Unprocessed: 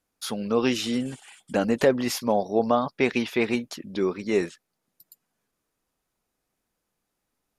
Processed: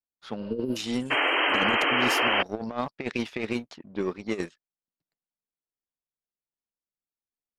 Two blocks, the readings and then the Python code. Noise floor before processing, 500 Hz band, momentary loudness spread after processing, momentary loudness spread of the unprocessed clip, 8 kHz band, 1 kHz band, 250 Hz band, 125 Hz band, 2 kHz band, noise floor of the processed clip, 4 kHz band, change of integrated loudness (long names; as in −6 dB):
−81 dBFS, −7.0 dB, 12 LU, 11 LU, −5.0 dB, +1.5 dB, −5.0 dB, −4.0 dB, +7.0 dB, below −85 dBFS, +6.0 dB, −0.5 dB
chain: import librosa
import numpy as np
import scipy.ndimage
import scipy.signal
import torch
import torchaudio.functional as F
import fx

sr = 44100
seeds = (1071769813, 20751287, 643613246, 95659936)

y = fx.power_curve(x, sr, exponent=1.4)
y = fx.spec_repair(y, sr, seeds[0], start_s=0.44, length_s=0.3, low_hz=500.0, high_hz=9900.0, source='before')
y = fx.over_compress(y, sr, threshold_db=-28.0, ratio=-0.5)
y = fx.spec_paint(y, sr, seeds[1], shape='noise', start_s=1.1, length_s=1.33, low_hz=260.0, high_hz=3200.0, level_db=-24.0)
y = fx.env_lowpass(y, sr, base_hz=1400.0, full_db=-24.5)